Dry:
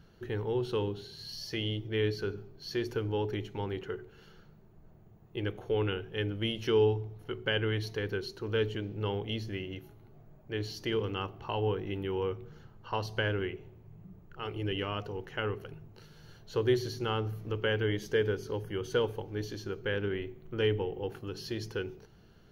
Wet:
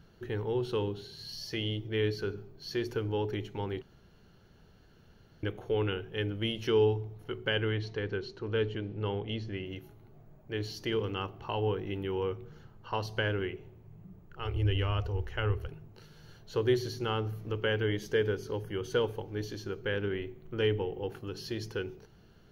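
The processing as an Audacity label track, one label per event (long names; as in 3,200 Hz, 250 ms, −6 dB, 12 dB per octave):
3.820000	5.430000	fill with room tone
7.720000	9.660000	high-frequency loss of the air 120 metres
14.400000	15.690000	low shelf with overshoot 110 Hz +13.5 dB, Q 3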